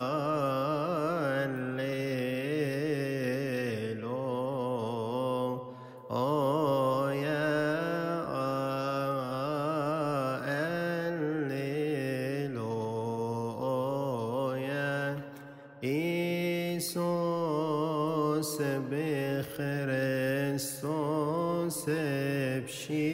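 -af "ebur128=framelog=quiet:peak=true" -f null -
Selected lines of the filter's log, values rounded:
Integrated loudness:
  I:         -31.6 LUFS
  Threshold: -41.7 LUFS
Loudness range:
  LRA:         2.5 LU
  Threshold: -51.8 LUFS
  LRA low:   -33.0 LUFS
  LRA high:  -30.5 LUFS
True peak:
  Peak:      -17.2 dBFS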